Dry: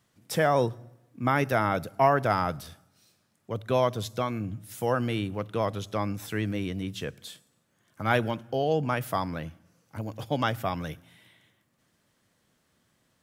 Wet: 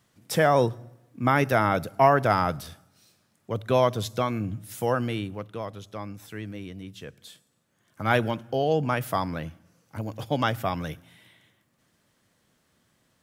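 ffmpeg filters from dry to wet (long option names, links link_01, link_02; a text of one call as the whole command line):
ffmpeg -i in.wav -af "volume=12dB,afade=type=out:start_time=4.67:duration=0.97:silence=0.316228,afade=type=in:start_time=7.02:duration=1.13:silence=0.354813" out.wav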